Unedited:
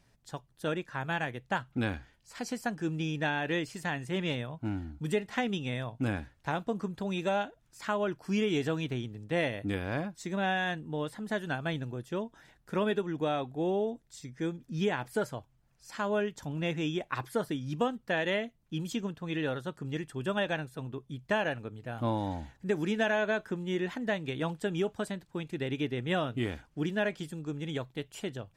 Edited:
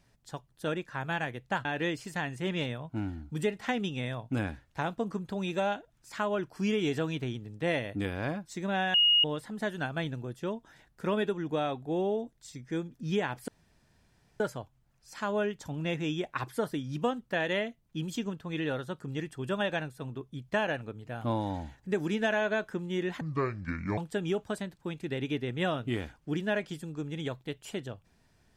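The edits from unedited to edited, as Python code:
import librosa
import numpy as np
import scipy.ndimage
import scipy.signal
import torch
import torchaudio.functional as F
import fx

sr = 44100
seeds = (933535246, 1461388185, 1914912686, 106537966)

y = fx.edit(x, sr, fx.cut(start_s=1.65, length_s=1.69),
    fx.bleep(start_s=10.63, length_s=0.3, hz=2870.0, db=-19.5),
    fx.insert_room_tone(at_s=15.17, length_s=0.92),
    fx.speed_span(start_s=23.98, length_s=0.49, speed=0.64), tone=tone)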